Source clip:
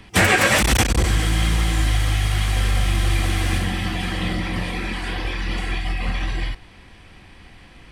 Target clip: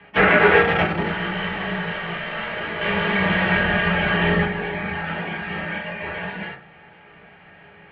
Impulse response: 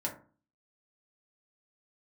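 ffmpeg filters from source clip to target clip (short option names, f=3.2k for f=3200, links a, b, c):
-filter_complex "[0:a]asettb=1/sr,asplit=3[a][b][c];[a]atrim=end=2.814[d];[b]atrim=start=2.81:end=4.45,asetpts=PTS-STARTPTS,afade=t=in:d=0.004:c=qsin,afade=t=out:st=1.636:d=0.004:c=qsin,acontrast=79[e];[c]atrim=start=4.446[f];[d][e]acrossfade=d=0.004:c1=hsin:c2=qsin[g];[g][f]acrossfade=d=0.004:c1=qsin:c2=hsin[h];[1:a]atrim=start_sample=2205[i];[h][i]afir=irnorm=-1:irlink=0,highpass=f=310:t=q:w=0.5412,highpass=f=310:t=q:w=1.307,lowpass=f=3.1k:t=q:w=0.5176,lowpass=f=3.1k:t=q:w=0.7071,lowpass=f=3.1k:t=q:w=1.932,afreqshift=-140"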